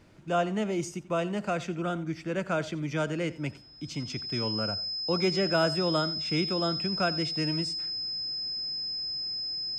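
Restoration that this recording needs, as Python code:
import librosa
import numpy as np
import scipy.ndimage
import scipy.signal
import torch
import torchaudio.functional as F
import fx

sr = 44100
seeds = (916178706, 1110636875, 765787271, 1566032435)

y = fx.fix_declip(x, sr, threshold_db=-15.5)
y = fx.notch(y, sr, hz=5100.0, q=30.0)
y = fx.fix_echo_inverse(y, sr, delay_ms=88, level_db=-18.5)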